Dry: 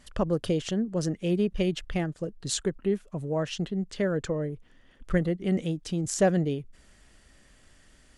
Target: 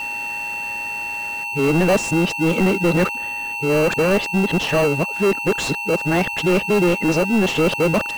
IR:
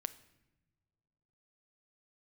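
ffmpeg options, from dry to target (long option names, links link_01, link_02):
-filter_complex "[0:a]areverse,highpass=120,asplit=2[link_01][link_02];[link_02]highpass=frequency=720:poles=1,volume=30dB,asoftclip=type=tanh:threshold=-11.5dB[link_03];[link_01][link_03]amix=inputs=2:normalize=0,lowpass=frequency=1800:poles=1,volume=-6dB,aeval=exprs='val(0)+0.0562*sin(2*PI*2700*n/s)':channel_layout=same,asplit=2[link_04][link_05];[link_05]acrusher=samples=25:mix=1:aa=0.000001,volume=-6.5dB[link_06];[link_04][link_06]amix=inputs=2:normalize=0"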